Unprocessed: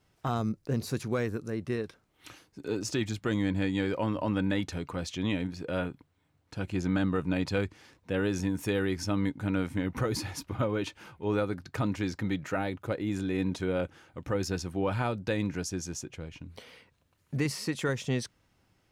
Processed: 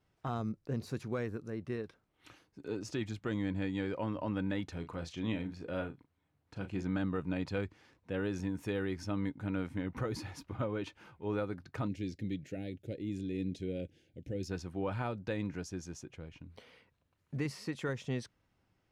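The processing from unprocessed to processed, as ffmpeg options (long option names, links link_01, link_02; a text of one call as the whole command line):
ffmpeg -i in.wav -filter_complex "[0:a]asettb=1/sr,asplit=3[link_01][link_02][link_03];[link_01]atrim=end=4.754[link_04];[link_02]atrim=start=4.75:end=6.83,asetpts=PTS-STARTPTS,afade=type=in:duration=0.004:curve=qsin,afade=type=out:start_time=2.076:duration=0.004:curve=qsin,asplit=2[link_05][link_06];[link_06]adelay=36,volume=-9dB[link_07];[link_05][link_07]amix=inputs=2:normalize=0,atrim=end_sample=91728[link_08];[link_03]atrim=start=6.826[link_09];[link_04][link_08]acrossfade=duration=0.004:curve1=hsin:curve2=qsin[link_10];[link_10][link_09]acrossfade=duration=0.004:curve1=qsin:curve2=hsin,asplit=3[link_11][link_12][link_13];[link_11]afade=type=out:start_time=11.87:duration=0.02[link_14];[link_12]asuperstop=centerf=1100:order=4:qfactor=0.55,afade=type=in:start_time=11.87:duration=0.02,afade=type=out:start_time=14.48:duration=0.02[link_15];[link_13]afade=type=in:start_time=14.48:duration=0.02[link_16];[link_14][link_15][link_16]amix=inputs=3:normalize=0,aemphasis=mode=reproduction:type=cd,volume=-6.5dB" out.wav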